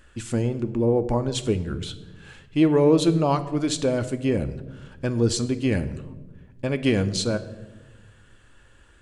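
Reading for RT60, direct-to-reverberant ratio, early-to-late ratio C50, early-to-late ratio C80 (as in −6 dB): 1.2 s, 9.5 dB, 14.5 dB, 16.5 dB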